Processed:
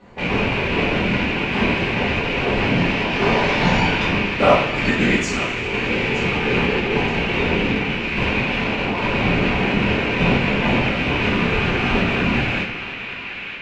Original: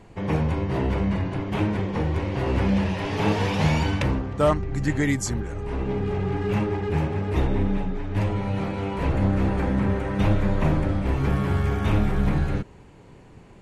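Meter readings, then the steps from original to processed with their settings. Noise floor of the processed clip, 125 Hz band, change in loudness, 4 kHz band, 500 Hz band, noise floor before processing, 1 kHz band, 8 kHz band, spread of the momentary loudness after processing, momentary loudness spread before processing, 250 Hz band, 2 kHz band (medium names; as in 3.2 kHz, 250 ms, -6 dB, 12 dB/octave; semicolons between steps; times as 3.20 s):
-30 dBFS, -1.0 dB, +5.5 dB, +14.5 dB, +6.0 dB, -48 dBFS, +7.5 dB, +0.5 dB, 5 LU, 5 LU, +4.0 dB, +15.0 dB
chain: rattle on loud lows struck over -28 dBFS, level -16 dBFS; high-pass 280 Hz 6 dB/octave; treble shelf 6.2 kHz +10.5 dB; whisper effect; distance through air 180 m; on a send: band-passed feedback delay 924 ms, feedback 75%, band-pass 2.5 kHz, level -9 dB; on the sum: two-slope reverb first 0.52 s, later 3.4 s, from -18 dB, DRR -7 dB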